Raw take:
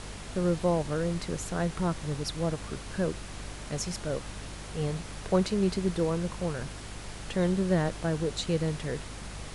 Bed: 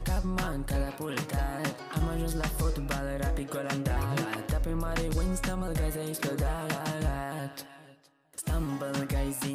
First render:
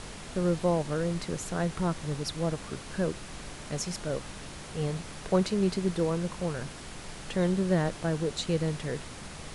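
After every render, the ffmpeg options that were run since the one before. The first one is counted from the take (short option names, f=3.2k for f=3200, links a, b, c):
-af "bandreject=f=50:t=h:w=4,bandreject=f=100:t=h:w=4"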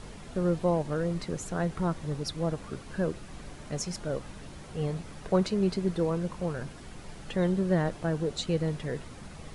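-af "afftdn=nr=8:nf=-43"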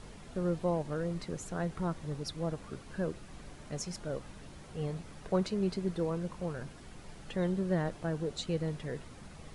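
-af "volume=-5dB"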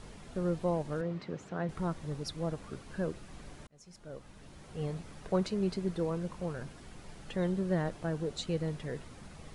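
-filter_complex "[0:a]asettb=1/sr,asplit=3[a][b][c];[a]atrim=end=1.014[d];[b]atrim=start=1.01:end=1.69,asetpts=PTS-STARTPTS,afade=t=in:d=0.004:c=qsin,afade=t=out:st=0.676:d=0.004:c=qsin,highpass=120,lowpass=3.4k[e];[c]atrim=start=1.686[f];[d][e]acrossfade=d=0.004:c1=hsin:c2=qsin[g];[g][f]acrossfade=d=0.004:c1=qsin:c2=hsin,asplit=2[h][i];[h]atrim=end=3.67,asetpts=PTS-STARTPTS,afade=t=out:st=3.666:d=0.004:c=hsin[j];[i]atrim=start=3.67,asetpts=PTS-STARTPTS,afade=t=in:d=1.17[k];[j][k]concat=n=2:v=0:a=1"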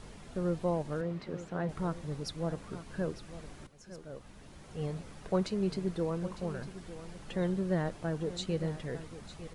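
-af "aecho=1:1:904:0.2"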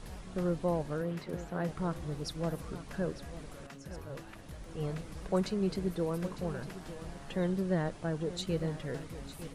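-filter_complex "[1:a]volume=-18dB[a];[0:a][a]amix=inputs=2:normalize=0"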